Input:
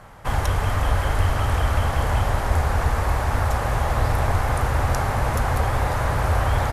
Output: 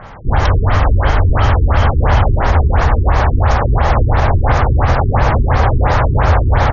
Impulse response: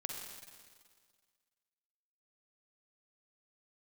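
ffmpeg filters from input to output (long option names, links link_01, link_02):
-filter_complex "[0:a]asplit=2[link_01][link_02];[1:a]atrim=start_sample=2205[link_03];[link_02][link_03]afir=irnorm=-1:irlink=0,volume=-17dB[link_04];[link_01][link_04]amix=inputs=2:normalize=0,alimiter=level_in=11.5dB:limit=-1dB:release=50:level=0:latency=1,afftfilt=real='re*lt(b*sr/1024,400*pow(7100/400,0.5+0.5*sin(2*PI*2.9*pts/sr)))':imag='im*lt(b*sr/1024,400*pow(7100/400,0.5+0.5*sin(2*PI*2.9*pts/sr)))':win_size=1024:overlap=0.75,volume=-1dB"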